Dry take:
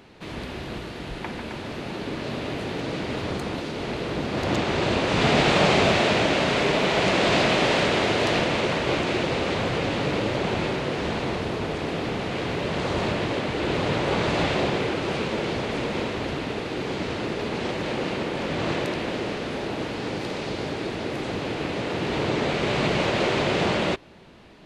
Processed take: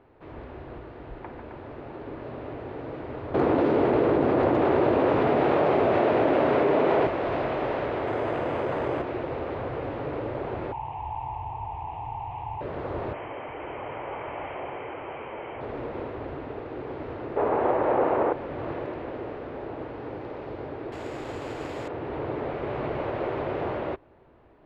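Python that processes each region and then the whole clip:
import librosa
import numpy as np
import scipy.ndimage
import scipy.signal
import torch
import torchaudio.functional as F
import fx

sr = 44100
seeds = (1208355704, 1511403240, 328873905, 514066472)

y = fx.chain(x, sr, fx.highpass(hz=170.0, slope=6),
    fx.peak_eq(hz=280.0, db=5.5, octaves=2.2),
    fx.env_flatten(amount_pct=100), at=(3.34, 7.07))
y = fx.chain(y, sr, fx.highpass(hz=82.0, slope=12),
    fx.resample_bad(factor=8, down='none', up='hold'),
    fx.env_flatten(amount_pct=100), at=(8.07, 9.02))
y = fx.chain(y, sr, fx.curve_eq(hz=(120.0, 190.0, 570.0, 880.0, 1400.0, 2700.0, 4700.0), db=(0, -19, -22, 13, -26, 0, -24)),
    fx.env_flatten(amount_pct=50), at=(10.72, 12.61))
y = fx.chain(y, sr, fx.cheby_ripple(hz=3200.0, ripple_db=6),
    fx.tilt_shelf(db=-6.5, hz=1100.0),
    fx.env_flatten(amount_pct=50), at=(13.13, 15.61))
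y = fx.chain(y, sr, fx.peak_eq(hz=820.0, db=15.0, octaves=2.8),
    fx.resample_linear(factor=4), at=(17.36, 18.33))
y = fx.chain(y, sr, fx.high_shelf(hz=2400.0, db=11.5),
    fx.resample_bad(factor=6, down='none', up='zero_stuff'), at=(20.92, 21.88))
y = scipy.signal.sosfilt(scipy.signal.butter(2, 1200.0, 'lowpass', fs=sr, output='sos'), y)
y = fx.peak_eq(y, sr, hz=190.0, db=-14.0, octaves=0.55)
y = F.gain(torch.from_numpy(y), -4.0).numpy()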